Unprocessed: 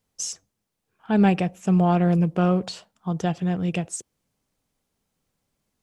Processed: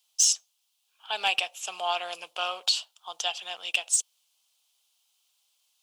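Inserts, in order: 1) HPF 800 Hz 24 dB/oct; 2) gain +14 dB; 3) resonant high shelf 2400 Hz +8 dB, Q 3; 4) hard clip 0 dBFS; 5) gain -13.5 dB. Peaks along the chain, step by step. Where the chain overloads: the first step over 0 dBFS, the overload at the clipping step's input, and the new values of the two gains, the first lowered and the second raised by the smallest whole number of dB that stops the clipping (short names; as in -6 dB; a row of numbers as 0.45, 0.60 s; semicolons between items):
-13.5, +0.5, +5.5, 0.0, -13.5 dBFS; step 2, 5.5 dB; step 2 +8 dB, step 5 -7.5 dB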